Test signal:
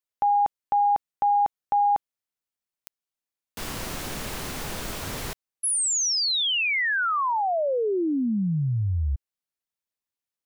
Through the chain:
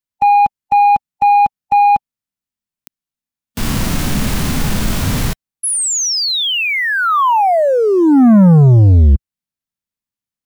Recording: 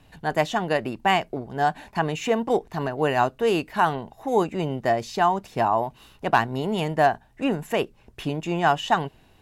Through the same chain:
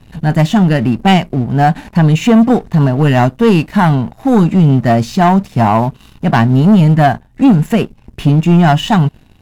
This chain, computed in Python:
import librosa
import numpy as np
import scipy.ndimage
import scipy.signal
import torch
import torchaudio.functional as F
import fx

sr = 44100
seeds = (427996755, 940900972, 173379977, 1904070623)

y = fx.hpss(x, sr, part='harmonic', gain_db=7)
y = fx.low_shelf_res(y, sr, hz=300.0, db=8.0, q=1.5)
y = fx.leveller(y, sr, passes=2)